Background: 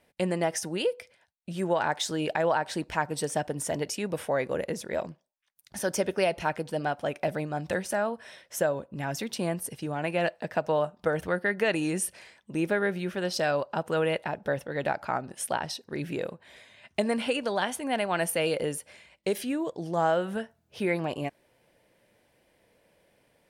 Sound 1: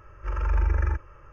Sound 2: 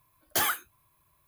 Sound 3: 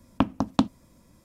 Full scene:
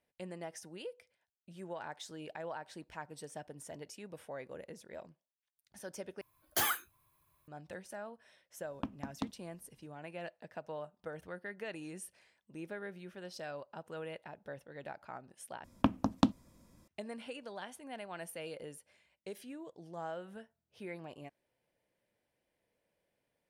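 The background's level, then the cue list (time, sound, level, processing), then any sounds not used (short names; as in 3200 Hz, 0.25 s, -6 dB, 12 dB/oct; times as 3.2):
background -17 dB
6.21 replace with 2 -5 dB
8.63 add 3 -16.5 dB
15.64 replace with 3 -5.5 dB
not used: 1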